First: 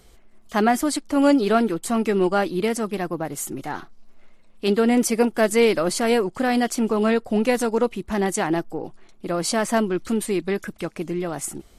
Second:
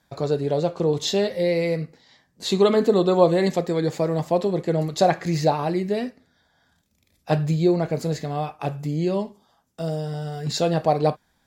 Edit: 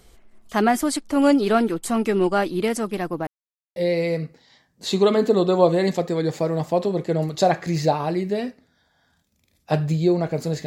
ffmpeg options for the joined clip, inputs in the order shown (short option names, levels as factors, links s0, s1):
-filter_complex "[0:a]apad=whole_dur=10.66,atrim=end=10.66,asplit=2[s0][s1];[s0]atrim=end=3.27,asetpts=PTS-STARTPTS,afade=t=out:st=3.266:d=0.004:c=hsin[s2];[s1]atrim=start=3.27:end=3.76,asetpts=PTS-STARTPTS,volume=0[s3];[1:a]atrim=start=1.35:end=8.25,asetpts=PTS-STARTPTS,afade=t=in:d=0.004:c=hsin[s4];[s2][s3][s4]concat=n=3:v=0:a=1"